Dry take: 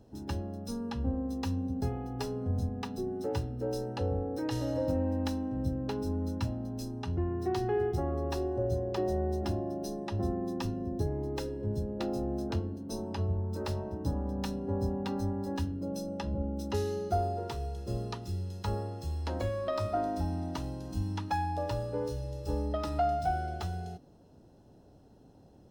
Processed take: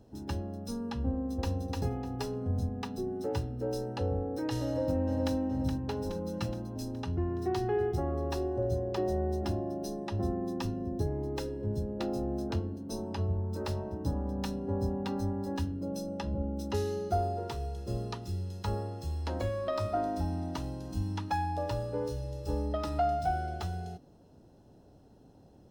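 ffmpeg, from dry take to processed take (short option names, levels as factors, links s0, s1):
-filter_complex "[0:a]asplit=2[s0][s1];[s1]afade=t=in:st=1.08:d=0.01,afade=t=out:st=1.56:d=0.01,aecho=0:1:300|600|900:0.841395|0.168279|0.0336558[s2];[s0][s2]amix=inputs=2:normalize=0,asplit=2[s3][s4];[s4]afade=t=in:st=4.65:d=0.01,afade=t=out:st=5.35:d=0.01,aecho=0:1:420|840|1260|1680|2100|2520|2940|3360:0.446684|0.26801|0.160806|0.0964837|0.0578902|0.0347341|0.0208405|0.0125043[s5];[s3][s5]amix=inputs=2:normalize=0,asettb=1/sr,asplit=3[s6][s7][s8];[s6]atrim=end=6.094[s9];[s7]atrim=start=6.09:end=6.76,asetpts=PTS-STARTPTS,afade=t=in:d=0.004:c=qsin,afade=t=out:st=0.666:d=0.004:c=qsin,aecho=1:1:5.7:0.72,atrim=end_sample=29547[s10];[s8]atrim=start=6.756[s11];[s9][s10]acrossfade=d=0.004:c1=hsin:c2=qsin[s12];[s12][s11]acrossfade=d=0.004:c1=qsin:c2=hsin"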